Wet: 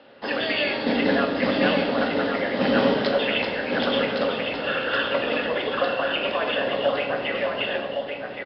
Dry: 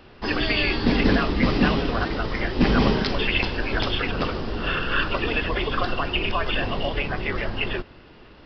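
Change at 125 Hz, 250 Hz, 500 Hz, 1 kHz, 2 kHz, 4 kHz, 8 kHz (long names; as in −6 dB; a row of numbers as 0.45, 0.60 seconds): −10.0 dB, −1.5 dB, +5.0 dB, +0.5 dB, 0.0 dB, 0.0 dB, can't be measured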